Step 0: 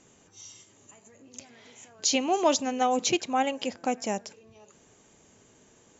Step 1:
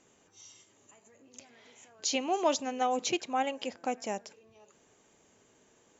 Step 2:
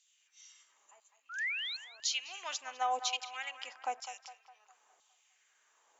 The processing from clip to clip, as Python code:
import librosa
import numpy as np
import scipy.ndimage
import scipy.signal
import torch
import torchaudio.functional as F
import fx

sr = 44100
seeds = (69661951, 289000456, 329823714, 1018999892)

y1 = fx.bass_treble(x, sr, bass_db=-6, treble_db=-3)
y1 = y1 * librosa.db_to_amplitude(-4.0)
y2 = fx.spec_paint(y1, sr, seeds[0], shape='rise', start_s=1.29, length_s=0.48, low_hz=1300.0, high_hz=4400.0, level_db=-35.0)
y2 = fx.filter_lfo_highpass(y2, sr, shape='saw_down', hz=1.0, low_hz=730.0, high_hz=3800.0, q=2.1)
y2 = fx.echo_banded(y2, sr, ms=204, feedback_pct=53, hz=1100.0, wet_db=-10)
y2 = y2 * librosa.db_to_amplitude(-5.0)